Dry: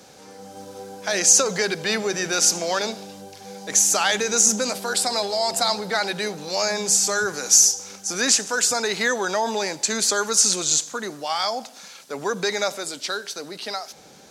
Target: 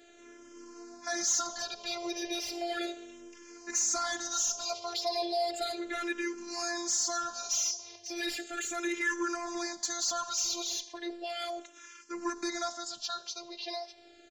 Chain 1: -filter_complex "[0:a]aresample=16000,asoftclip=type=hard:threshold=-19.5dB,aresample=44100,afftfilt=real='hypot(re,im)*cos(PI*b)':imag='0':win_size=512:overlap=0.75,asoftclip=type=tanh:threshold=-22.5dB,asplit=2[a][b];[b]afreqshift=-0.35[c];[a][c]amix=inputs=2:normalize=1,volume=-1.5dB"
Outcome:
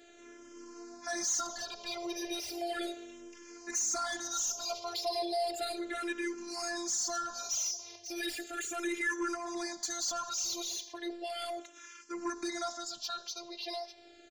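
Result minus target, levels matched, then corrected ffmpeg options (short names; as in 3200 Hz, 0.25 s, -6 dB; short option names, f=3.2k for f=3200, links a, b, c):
soft clip: distortion +10 dB
-filter_complex "[0:a]aresample=16000,asoftclip=type=hard:threshold=-19.5dB,aresample=44100,afftfilt=real='hypot(re,im)*cos(PI*b)':imag='0':win_size=512:overlap=0.75,asoftclip=type=tanh:threshold=-14dB,asplit=2[a][b];[b]afreqshift=-0.35[c];[a][c]amix=inputs=2:normalize=1,volume=-1.5dB"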